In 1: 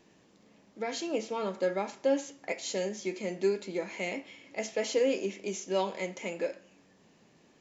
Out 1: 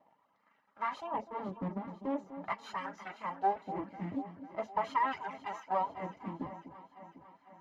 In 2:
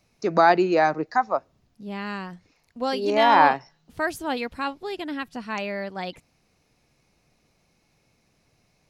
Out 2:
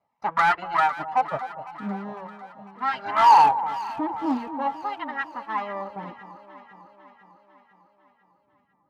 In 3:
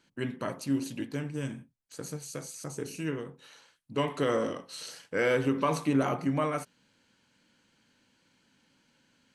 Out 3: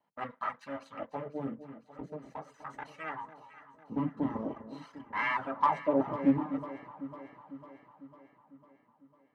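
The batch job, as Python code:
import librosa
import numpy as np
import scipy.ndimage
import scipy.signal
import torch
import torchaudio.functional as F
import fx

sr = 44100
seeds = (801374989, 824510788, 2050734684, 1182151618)

p1 = fx.lower_of_two(x, sr, delay_ms=1.0)
p2 = fx.dereverb_blind(p1, sr, rt60_s=0.95)
p3 = fx.high_shelf(p2, sr, hz=4600.0, db=-11.0)
p4 = fx.leveller(p3, sr, passes=1)
p5 = fx.wah_lfo(p4, sr, hz=0.43, low_hz=270.0, high_hz=1500.0, q=2.4)
p6 = fx.notch_comb(p5, sr, f0_hz=360.0)
p7 = 10.0 ** (-24.0 / 20.0) * (np.abs((p6 / 10.0 ** (-24.0 / 20.0) + 3.0) % 4.0 - 2.0) - 1.0)
p8 = p6 + (p7 * 10.0 ** (-9.0 / 20.0))
p9 = fx.vibrato(p8, sr, rate_hz=2.9, depth_cents=21.0)
p10 = p9 + fx.echo_alternate(p9, sr, ms=250, hz=970.0, feedback_pct=75, wet_db=-11.5, dry=0)
p11 = fx.doppler_dist(p10, sr, depth_ms=0.12)
y = p11 * 10.0 ** (5.0 / 20.0)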